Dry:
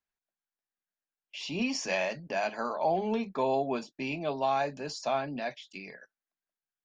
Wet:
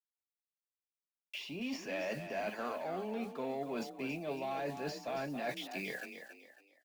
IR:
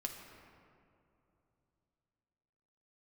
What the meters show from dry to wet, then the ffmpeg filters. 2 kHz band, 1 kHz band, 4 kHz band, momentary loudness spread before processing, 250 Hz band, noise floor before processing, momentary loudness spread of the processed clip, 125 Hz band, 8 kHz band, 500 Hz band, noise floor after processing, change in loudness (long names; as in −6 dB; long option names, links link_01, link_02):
−5.5 dB, −10.0 dB, −6.5 dB, 12 LU, −5.5 dB, below −85 dBFS, 6 LU, −5.5 dB, −10.5 dB, −7.5 dB, below −85 dBFS, −8.0 dB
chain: -filter_complex "[0:a]acrossover=split=580|3100[link_01][link_02][link_03];[link_02]asoftclip=type=tanh:threshold=-32dB[link_04];[link_01][link_04][link_03]amix=inputs=3:normalize=0,acrossover=split=2700[link_05][link_06];[link_06]acompressor=threshold=-54dB:ratio=4:attack=1:release=60[link_07];[link_05][link_07]amix=inputs=2:normalize=0,acrusher=bits=9:mix=0:aa=0.000001,equalizer=frequency=910:width_type=o:width=0.87:gain=-4.5,areverse,acompressor=threshold=-43dB:ratio=10,areverse,lowshelf=frequency=230:gain=-5.5,asplit=5[link_08][link_09][link_10][link_11][link_12];[link_09]adelay=276,afreqshift=35,volume=-9dB[link_13];[link_10]adelay=552,afreqshift=70,volume=-18.4dB[link_14];[link_11]adelay=828,afreqshift=105,volume=-27.7dB[link_15];[link_12]adelay=1104,afreqshift=140,volume=-37.1dB[link_16];[link_08][link_13][link_14][link_15][link_16]amix=inputs=5:normalize=0,volume=8dB"